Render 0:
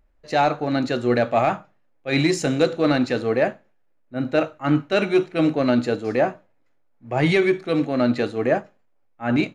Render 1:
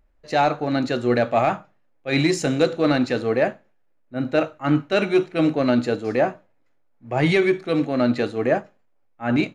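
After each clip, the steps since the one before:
no processing that can be heard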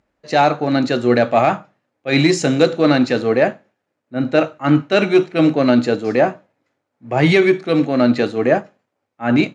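Chebyshev band-pass filter 140–7,000 Hz, order 2
level +6 dB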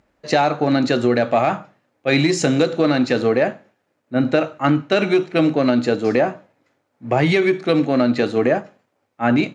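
downward compressor, threshold −19 dBFS, peak gain reduction 11 dB
level +5.5 dB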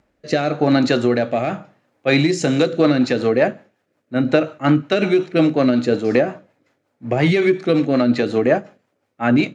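rotating-speaker cabinet horn 0.9 Hz, later 5.5 Hz, at 0:02.14
level +2.5 dB

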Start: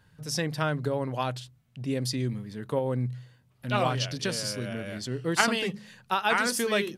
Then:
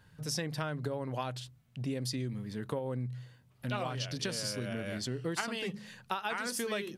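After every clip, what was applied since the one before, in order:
downward compressor 6 to 1, threshold −32 dBFS, peak gain reduction 14.5 dB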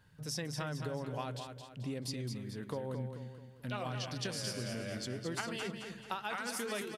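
repeating echo 218 ms, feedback 44%, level −7 dB
level −4 dB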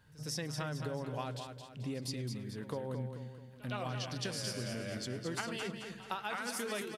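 echo ahead of the sound 112 ms −19 dB

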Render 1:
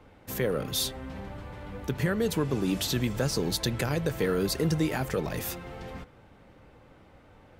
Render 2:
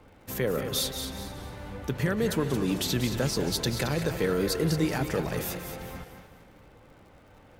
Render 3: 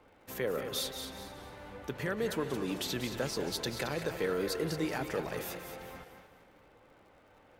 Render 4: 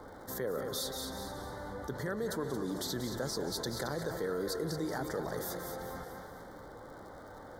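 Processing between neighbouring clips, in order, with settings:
surface crackle 130 per second −52 dBFS; feedback echo with a high-pass in the loop 223 ms, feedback 35%, level −9.5 dB; feedback echo with a swinging delay time 185 ms, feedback 40%, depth 134 cents, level −11 dB
bass and treble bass −9 dB, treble −4 dB; level −4 dB
Butterworth band-reject 2,600 Hz, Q 1.3; envelope flattener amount 50%; level −3.5 dB

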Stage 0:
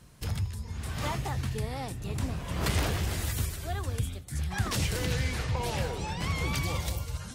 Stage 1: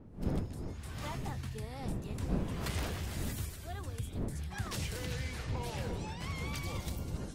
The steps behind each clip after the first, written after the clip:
fade in at the beginning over 0.58 s
wind on the microphone 220 Hz −33 dBFS
level −8.5 dB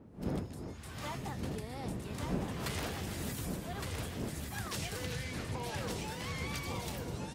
high-pass filter 140 Hz 6 dB per octave
on a send: single-tap delay 1,163 ms −4.5 dB
on the sum: level +1 dB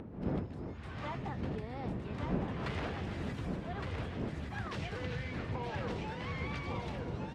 low-pass filter 2,600 Hz 12 dB per octave
upward compression, threshold −40 dBFS
level +1 dB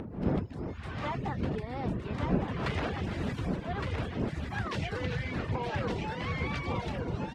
reverb reduction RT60 0.53 s
level +6.5 dB

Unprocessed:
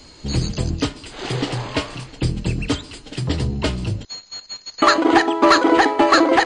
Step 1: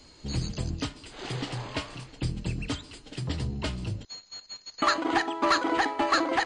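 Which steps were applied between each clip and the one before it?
dynamic equaliser 420 Hz, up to −7 dB, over −30 dBFS, Q 1.4
level −9 dB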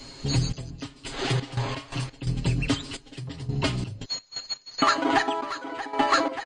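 comb filter 7.4 ms, depth 71%
downward compressor 2 to 1, threshold −32 dBFS, peak gain reduction 8.5 dB
gate pattern "xxx...xx.x.x.x" 86 BPM −12 dB
level +8.5 dB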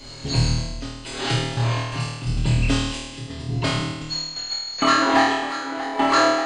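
flutter between parallel walls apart 4.4 metres, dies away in 1.1 s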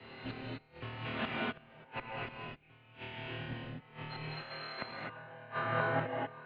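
gate with flip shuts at −17 dBFS, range −31 dB
reverb whose tail is shaped and stops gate 280 ms rising, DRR −2.5 dB
single-sideband voice off tune −160 Hz 320–3,000 Hz
level −5 dB

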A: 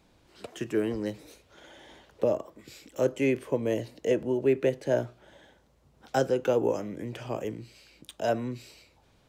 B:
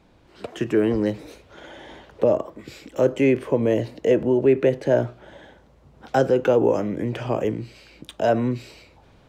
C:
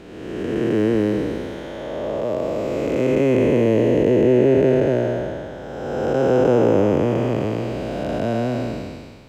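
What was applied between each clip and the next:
high-shelf EQ 4,300 Hz −12 dB; in parallel at +1.5 dB: brickwall limiter −24 dBFS, peak gain reduction 11.5 dB; on the sum: automatic gain control gain up to 4 dB
spectrum smeared in time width 707 ms; level +8.5 dB

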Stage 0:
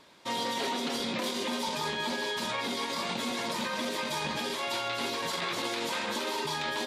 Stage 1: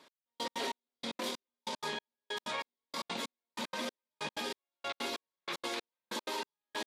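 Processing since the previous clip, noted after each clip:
high-pass filter 200 Hz 12 dB per octave
gate pattern "x....x.x" 189 BPM −60 dB
level −4 dB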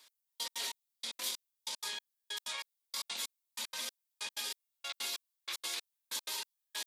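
first-order pre-emphasis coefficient 0.97
level +7.5 dB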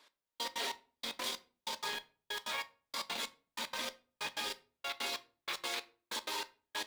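low-pass filter 1,200 Hz 6 dB per octave
in parallel at −6.5 dB: bit reduction 8 bits
on the sum: convolution reverb RT60 0.40 s, pre-delay 7 ms, DRR 12 dB
level +6.5 dB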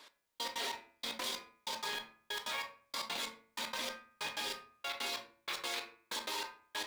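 hum removal 112.2 Hz, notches 23
in parallel at −0.5 dB: compressor whose output falls as the input rises −47 dBFS, ratio −1
on the sum: level −2.5 dB

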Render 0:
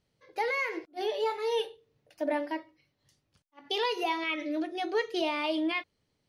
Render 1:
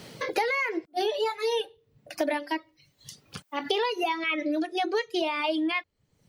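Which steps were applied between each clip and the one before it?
reverb reduction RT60 1.1 s
multiband upward and downward compressor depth 100%
level +3.5 dB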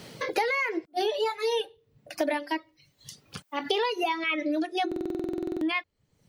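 buffer that repeats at 0:04.87, samples 2,048, times 15

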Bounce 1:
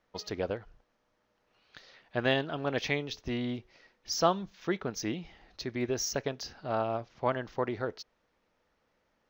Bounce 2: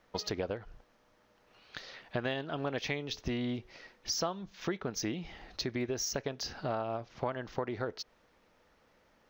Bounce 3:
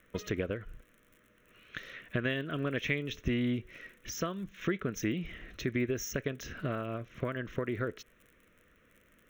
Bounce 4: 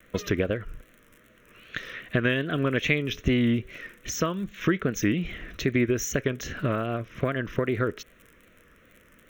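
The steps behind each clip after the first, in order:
downward compressor 5 to 1, threshold −40 dBFS, peak gain reduction 18.5 dB; level +7.5 dB
surface crackle 66 per second −49 dBFS; phaser with its sweep stopped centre 2,000 Hz, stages 4; level +5 dB
pitch vibrato 2.5 Hz 78 cents; level +8 dB

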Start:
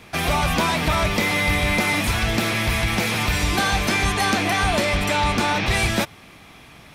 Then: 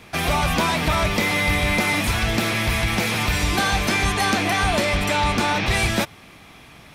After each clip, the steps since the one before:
no processing that can be heard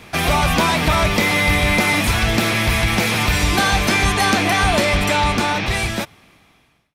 fade-out on the ending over 1.90 s
level +4 dB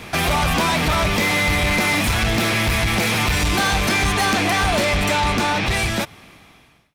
in parallel at −1 dB: downward compressor, threshold −26 dBFS, peak gain reduction 13 dB
on the sum: soft clipping −14.5 dBFS, distortion −12 dB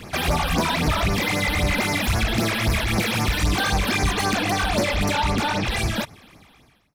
all-pass phaser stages 12, 3.8 Hz, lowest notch 110–3,400 Hz
level −1 dB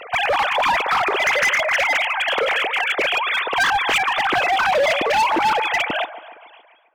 three sine waves on the formant tracks
delay with a band-pass on its return 140 ms, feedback 55%, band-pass 720 Hz, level −13 dB
hard clipping −19 dBFS, distortion −9 dB
level +4.5 dB

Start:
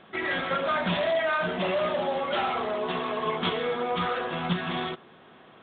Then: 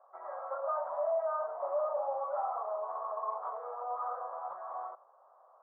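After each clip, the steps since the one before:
elliptic band-pass filter 560–1,200 Hz, stop band 50 dB
level −4.5 dB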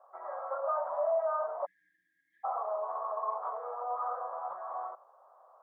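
time-frequency box erased 0:01.66–0:02.44, 330–1,600 Hz
level +2 dB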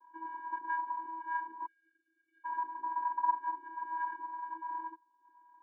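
reverb reduction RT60 0.84 s
channel vocoder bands 16, square 325 Hz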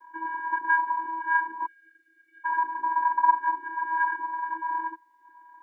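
parametric band 1,900 Hz +14.5 dB 0.5 octaves
level +8.5 dB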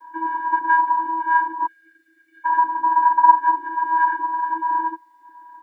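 comb filter 6.4 ms, depth 92%
level +5.5 dB

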